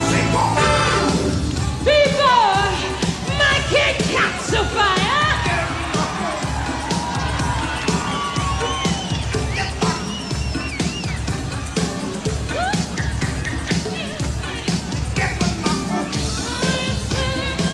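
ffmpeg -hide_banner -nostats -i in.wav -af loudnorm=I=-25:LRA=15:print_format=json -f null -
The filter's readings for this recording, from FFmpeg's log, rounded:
"input_i" : "-19.9",
"input_tp" : "-4.0",
"input_lra" : "6.2",
"input_thresh" : "-29.9",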